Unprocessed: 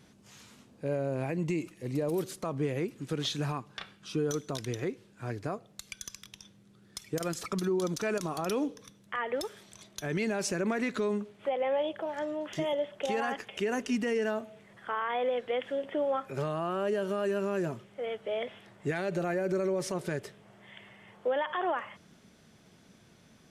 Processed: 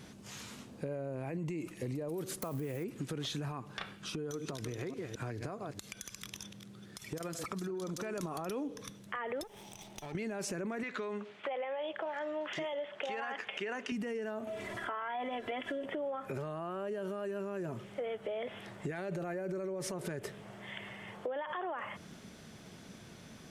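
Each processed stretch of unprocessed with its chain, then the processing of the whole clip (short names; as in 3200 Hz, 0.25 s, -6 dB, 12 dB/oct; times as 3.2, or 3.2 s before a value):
2.42–2.84 switching spikes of -38 dBFS + high shelf 10000 Hz +6 dB
4.09–8.18 reverse delay 0.213 s, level -12.5 dB + HPF 44 Hz + compressor, threshold -41 dBFS
9.43–10.15 minimum comb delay 0.33 ms + bell 830 Hz +14 dB 0.3 oct + compressor 3:1, threshold -54 dBFS
10.83–13.92 gate with hold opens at -45 dBFS, closes at -49 dBFS + LPF 2500 Hz + tilt +4.5 dB/oct
14.47–15.86 comb 3 ms, depth 83% + upward compressor, threshold -39 dBFS
whole clip: dynamic EQ 4600 Hz, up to -5 dB, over -54 dBFS, Q 0.75; limiter -31 dBFS; compressor, threshold -42 dBFS; gain +7 dB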